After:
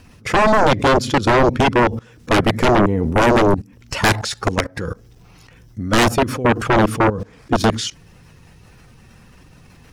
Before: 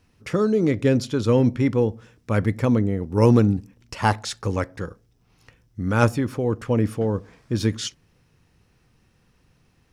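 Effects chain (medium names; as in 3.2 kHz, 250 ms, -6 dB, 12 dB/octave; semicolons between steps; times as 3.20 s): coarse spectral quantiser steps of 15 dB; level held to a coarse grid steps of 22 dB; 2.61–3.53 s: transient shaper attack -1 dB, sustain +7 dB; sine folder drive 14 dB, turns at -11.5 dBFS; trim +2 dB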